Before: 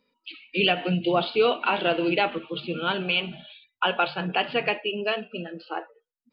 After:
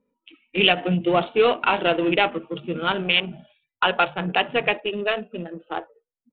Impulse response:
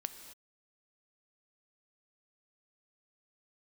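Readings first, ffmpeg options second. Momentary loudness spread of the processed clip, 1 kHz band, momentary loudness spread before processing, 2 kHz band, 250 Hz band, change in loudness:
14 LU, +3.5 dB, 14 LU, +3.5 dB, +3.0 dB, +3.5 dB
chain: -af "adynamicsmooth=sensitivity=1.5:basefreq=780,aemphasis=mode=production:type=75kf,aresample=8000,aresample=44100,volume=1.41"

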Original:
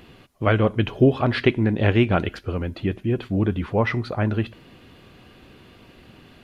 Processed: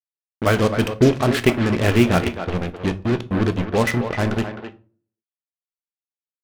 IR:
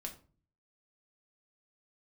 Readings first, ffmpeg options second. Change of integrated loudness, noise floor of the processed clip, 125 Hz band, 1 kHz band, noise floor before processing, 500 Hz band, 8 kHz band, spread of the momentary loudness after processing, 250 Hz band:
+2.0 dB, under -85 dBFS, +0.5 dB, +3.0 dB, -51 dBFS, +2.5 dB, no reading, 9 LU, +2.5 dB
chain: -filter_complex "[0:a]acrusher=bits=3:mix=0:aa=0.5,asplit=2[s0][s1];[s1]adelay=260,highpass=300,lowpass=3400,asoftclip=type=hard:threshold=0.266,volume=0.398[s2];[s0][s2]amix=inputs=2:normalize=0,asplit=2[s3][s4];[1:a]atrim=start_sample=2205[s5];[s4][s5]afir=irnorm=-1:irlink=0,volume=0.944[s6];[s3][s6]amix=inputs=2:normalize=0,volume=0.75"

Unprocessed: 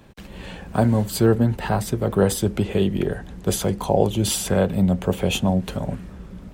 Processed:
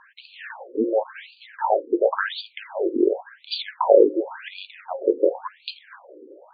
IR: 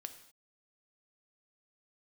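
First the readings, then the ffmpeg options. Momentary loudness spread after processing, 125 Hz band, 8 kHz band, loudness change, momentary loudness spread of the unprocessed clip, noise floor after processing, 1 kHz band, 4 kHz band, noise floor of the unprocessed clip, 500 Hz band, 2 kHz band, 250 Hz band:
20 LU, under -40 dB, under -40 dB, -1.0 dB, 12 LU, -56 dBFS, +1.5 dB, -3.0 dB, -41 dBFS, +2.5 dB, +1.0 dB, -6.5 dB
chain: -af "highpass=f=110:w=0.5412,highpass=f=110:w=1.3066,equalizer=f=330:t=q:w=4:g=5,equalizer=f=550:t=q:w=4:g=5,equalizer=f=940:t=q:w=4:g=7,equalizer=f=1600:t=q:w=4:g=8,equalizer=f=4600:t=q:w=4:g=8,lowpass=f=6500:w=0.5412,lowpass=f=6500:w=1.3066,bandreject=f=269:t=h:w=4,bandreject=f=538:t=h:w=4,bandreject=f=807:t=h:w=4,bandreject=f=1076:t=h:w=4,bandreject=f=1345:t=h:w=4,bandreject=f=1614:t=h:w=4,bandreject=f=1883:t=h:w=4,bandreject=f=2152:t=h:w=4,bandreject=f=2421:t=h:w=4,bandreject=f=2690:t=h:w=4,bandreject=f=2959:t=h:w=4,afftfilt=real='re*between(b*sr/1024,360*pow(3400/360,0.5+0.5*sin(2*PI*0.92*pts/sr))/1.41,360*pow(3400/360,0.5+0.5*sin(2*PI*0.92*pts/sr))*1.41)':imag='im*between(b*sr/1024,360*pow(3400/360,0.5+0.5*sin(2*PI*0.92*pts/sr))/1.41,360*pow(3400/360,0.5+0.5*sin(2*PI*0.92*pts/sr))*1.41)':win_size=1024:overlap=0.75,volume=1.5"

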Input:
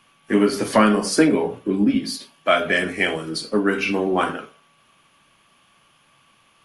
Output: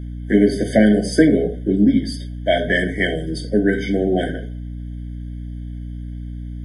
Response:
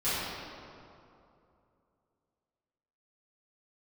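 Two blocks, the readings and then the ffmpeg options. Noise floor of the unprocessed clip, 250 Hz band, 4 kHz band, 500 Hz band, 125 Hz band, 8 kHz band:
-59 dBFS, +4.0 dB, -2.0 dB, +2.5 dB, +8.0 dB, -5.5 dB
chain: -af "bass=f=250:g=4,treble=f=4000:g=-5,aeval=exprs='val(0)+0.0316*(sin(2*PI*60*n/s)+sin(2*PI*2*60*n/s)/2+sin(2*PI*3*60*n/s)/3+sin(2*PI*4*60*n/s)/4+sin(2*PI*5*60*n/s)/5)':c=same,afftfilt=real='re*eq(mod(floor(b*sr/1024/750),2),0)':imag='im*eq(mod(floor(b*sr/1024/750),2),0)':win_size=1024:overlap=0.75,volume=1.26"

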